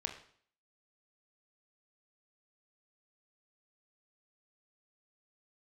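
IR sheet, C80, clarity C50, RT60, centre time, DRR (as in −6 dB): 12.0 dB, 9.0 dB, 0.55 s, 17 ms, 4.0 dB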